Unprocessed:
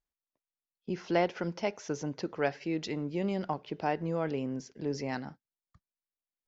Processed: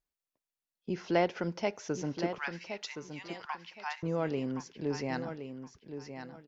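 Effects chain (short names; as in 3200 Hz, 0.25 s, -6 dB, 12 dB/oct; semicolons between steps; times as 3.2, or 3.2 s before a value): 2.38–4.03 steep high-pass 880 Hz 48 dB/oct; feedback echo 1.069 s, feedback 24%, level -9 dB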